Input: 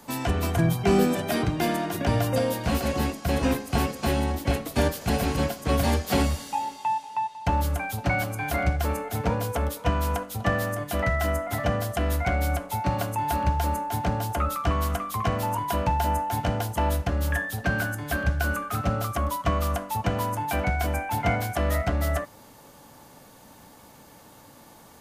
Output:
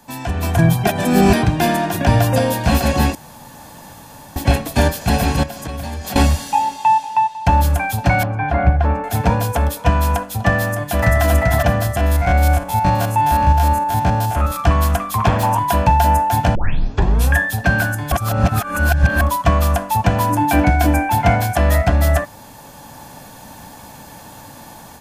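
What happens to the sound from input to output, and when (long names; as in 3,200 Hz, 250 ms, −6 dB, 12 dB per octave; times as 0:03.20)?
0:00.87–0:01.33: reverse
0:03.15–0:04.36: fill with room tone
0:05.43–0:06.16: downward compressor 20 to 1, threshold −32 dBFS
0:08.23–0:09.04: low-pass filter 1,700 Hz
0:10.63–0:11.23: delay throw 390 ms, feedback 25%, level −1.5 dB
0:11.96–0:14.60: spectrum averaged block by block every 50 ms
0:15.18–0:15.59: highs frequency-modulated by the lows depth 0.6 ms
0:16.55: tape start 0.80 s
0:18.12–0:19.21: reverse
0:20.29–0:21.12: parametric band 300 Hz +15 dB 0.25 octaves
whole clip: comb filter 1.2 ms, depth 38%; automatic gain control gain up to 11.5 dB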